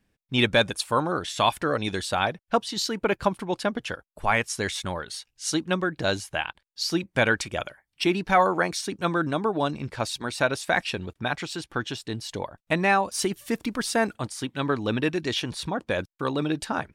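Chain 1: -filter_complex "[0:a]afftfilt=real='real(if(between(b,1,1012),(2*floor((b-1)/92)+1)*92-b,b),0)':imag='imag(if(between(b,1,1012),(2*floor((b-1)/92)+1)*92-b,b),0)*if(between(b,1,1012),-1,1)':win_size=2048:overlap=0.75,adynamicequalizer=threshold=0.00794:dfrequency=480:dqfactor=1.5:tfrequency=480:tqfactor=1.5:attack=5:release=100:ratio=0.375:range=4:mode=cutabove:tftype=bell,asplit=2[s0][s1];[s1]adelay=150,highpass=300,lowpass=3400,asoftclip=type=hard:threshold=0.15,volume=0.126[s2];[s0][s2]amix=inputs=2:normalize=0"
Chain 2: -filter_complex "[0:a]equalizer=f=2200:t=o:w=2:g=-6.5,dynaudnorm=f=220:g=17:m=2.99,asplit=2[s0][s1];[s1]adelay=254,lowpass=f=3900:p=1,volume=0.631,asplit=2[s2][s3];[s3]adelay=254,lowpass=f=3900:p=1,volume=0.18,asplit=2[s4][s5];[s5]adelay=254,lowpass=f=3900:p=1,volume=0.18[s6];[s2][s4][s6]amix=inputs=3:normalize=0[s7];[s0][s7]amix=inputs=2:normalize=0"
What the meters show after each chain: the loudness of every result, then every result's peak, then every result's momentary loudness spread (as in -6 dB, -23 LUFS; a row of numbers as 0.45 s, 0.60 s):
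-25.5 LUFS, -20.0 LUFS; -7.0 dBFS, -1.5 dBFS; 9 LU, 10 LU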